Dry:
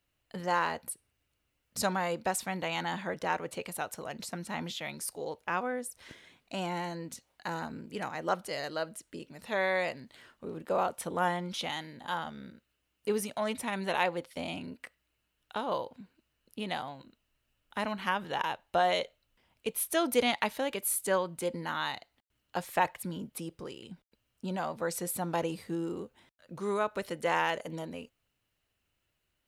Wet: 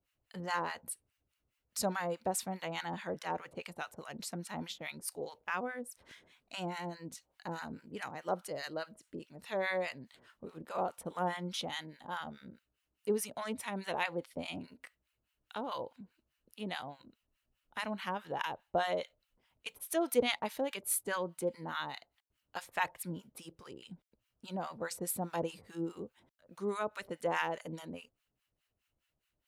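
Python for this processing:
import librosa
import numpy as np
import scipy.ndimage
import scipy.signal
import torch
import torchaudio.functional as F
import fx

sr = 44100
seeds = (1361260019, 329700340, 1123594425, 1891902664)

y = fx.harmonic_tremolo(x, sr, hz=4.8, depth_pct=100, crossover_hz=930.0)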